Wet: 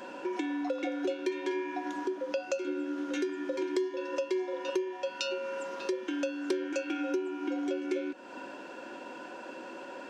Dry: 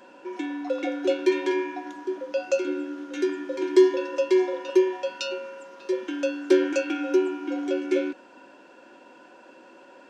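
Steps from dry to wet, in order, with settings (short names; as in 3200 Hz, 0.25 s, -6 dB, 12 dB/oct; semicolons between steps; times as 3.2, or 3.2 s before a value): compressor 5:1, threshold -38 dBFS, peak gain reduction 22.5 dB; gain +6.5 dB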